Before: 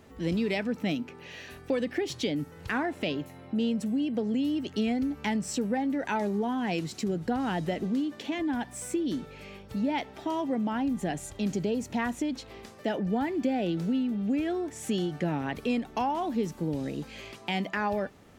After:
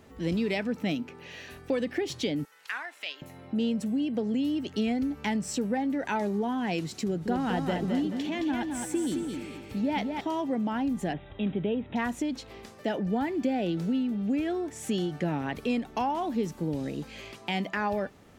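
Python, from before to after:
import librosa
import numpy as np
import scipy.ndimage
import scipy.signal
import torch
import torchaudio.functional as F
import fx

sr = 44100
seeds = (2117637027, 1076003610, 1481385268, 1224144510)

y = fx.highpass(x, sr, hz=1400.0, slope=12, at=(2.45, 3.22))
y = fx.echo_feedback(y, sr, ms=216, feedback_pct=36, wet_db=-5.0, at=(7.04, 10.21))
y = fx.brickwall_lowpass(y, sr, high_hz=3900.0, at=(11.13, 11.96))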